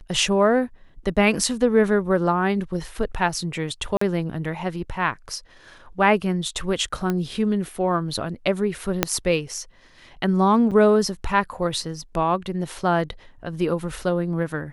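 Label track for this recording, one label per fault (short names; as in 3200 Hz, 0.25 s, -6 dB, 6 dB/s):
3.970000	4.010000	gap 44 ms
7.100000	7.100000	pop -12 dBFS
9.030000	9.030000	pop -1 dBFS
10.710000	10.720000	gap 7.1 ms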